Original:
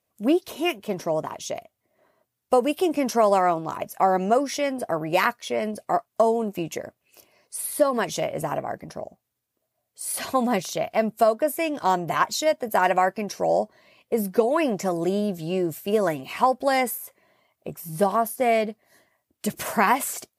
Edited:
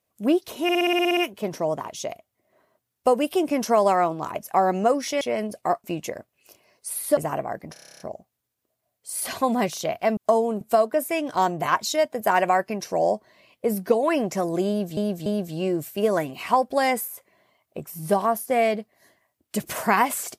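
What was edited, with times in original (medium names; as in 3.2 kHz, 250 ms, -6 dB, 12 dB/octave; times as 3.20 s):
0.63 s: stutter 0.06 s, 10 plays
4.67–5.45 s: delete
6.08–6.52 s: move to 11.09 s
7.85–8.36 s: delete
8.92 s: stutter 0.03 s, 10 plays
15.16–15.45 s: loop, 3 plays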